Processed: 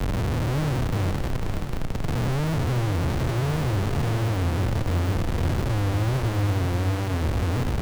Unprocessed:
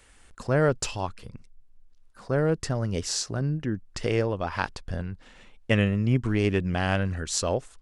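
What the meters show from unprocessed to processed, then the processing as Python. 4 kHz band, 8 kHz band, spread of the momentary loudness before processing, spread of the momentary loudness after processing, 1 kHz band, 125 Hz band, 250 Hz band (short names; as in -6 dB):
-1.5 dB, -7.0 dB, 11 LU, 4 LU, +2.5 dB, +6.0 dB, +0.5 dB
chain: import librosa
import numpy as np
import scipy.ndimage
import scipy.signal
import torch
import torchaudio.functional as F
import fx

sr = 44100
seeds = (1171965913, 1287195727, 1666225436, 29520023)

p1 = fx.spec_blur(x, sr, span_ms=594.0)
p2 = p1 + 10.0 ** (-21.0 / 20.0) * np.pad(p1, (int(559 * sr / 1000.0), 0))[:len(p1)]
p3 = fx.rider(p2, sr, range_db=4, speed_s=0.5)
p4 = p2 + F.gain(torch.from_numpy(p3), 1.0).numpy()
p5 = scipy.signal.sosfilt(scipy.signal.cheby2(4, 50, [320.0, 7900.0], 'bandstop', fs=sr, output='sos'), p4)
p6 = fx.leveller(p5, sr, passes=3)
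p7 = fx.schmitt(p6, sr, flips_db=-42.5)
p8 = fx.high_shelf(p7, sr, hz=5500.0, db=-5.0)
p9 = fx.echo_feedback(p8, sr, ms=489, feedback_pct=59, wet_db=-8.5)
y = fx.band_squash(p9, sr, depth_pct=40)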